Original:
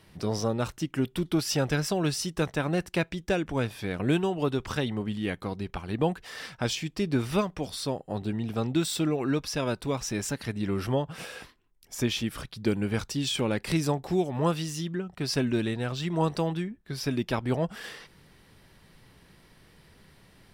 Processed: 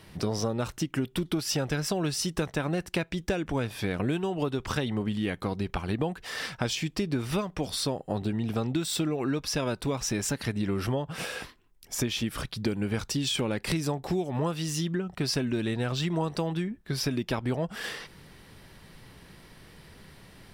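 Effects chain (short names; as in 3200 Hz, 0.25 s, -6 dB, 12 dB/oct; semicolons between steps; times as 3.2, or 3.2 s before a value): compressor, threshold -31 dBFS, peak gain reduction 11 dB; gain +5.5 dB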